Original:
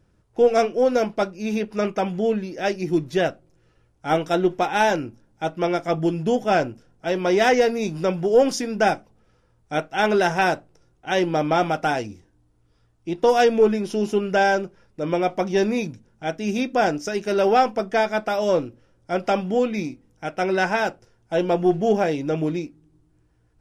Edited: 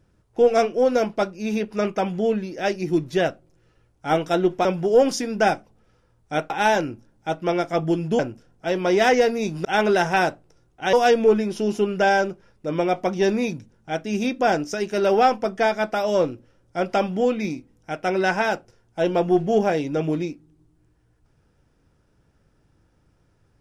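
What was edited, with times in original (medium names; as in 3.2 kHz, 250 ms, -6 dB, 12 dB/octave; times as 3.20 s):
6.34–6.59 s: delete
8.05–9.90 s: move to 4.65 s
11.18–13.27 s: delete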